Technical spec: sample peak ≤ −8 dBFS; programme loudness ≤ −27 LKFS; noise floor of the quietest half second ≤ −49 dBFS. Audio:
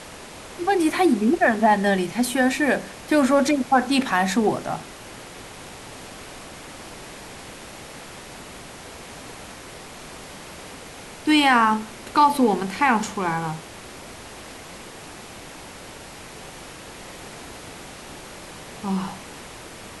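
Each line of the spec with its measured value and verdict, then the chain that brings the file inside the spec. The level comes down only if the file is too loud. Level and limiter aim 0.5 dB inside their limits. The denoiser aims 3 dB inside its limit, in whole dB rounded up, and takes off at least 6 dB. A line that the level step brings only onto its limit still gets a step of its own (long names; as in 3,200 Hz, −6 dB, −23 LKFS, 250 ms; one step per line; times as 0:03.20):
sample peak −5.5 dBFS: out of spec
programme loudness −21.0 LKFS: out of spec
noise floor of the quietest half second −40 dBFS: out of spec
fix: broadband denoise 6 dB, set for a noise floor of −40 dBFS
level −6.5 dB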